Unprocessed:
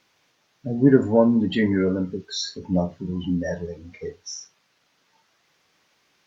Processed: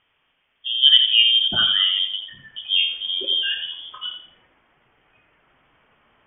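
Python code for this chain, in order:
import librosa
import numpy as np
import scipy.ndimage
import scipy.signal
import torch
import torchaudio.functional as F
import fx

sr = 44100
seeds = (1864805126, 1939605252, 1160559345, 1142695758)

y = fx.high_shelf(x, sr, hz=2200.0, db=fx.steps((0.0, -7.5), (1.52, 5.0), (2.72, 11.5)))
y = fx.echo_feedback(y, sr, ms=84, feedback_pct=31, wet_db=-8)
y = fx.freq_invert(y, sr, carrier_hz=3400)
y = y * librosa.db_to_amplitude(1.0)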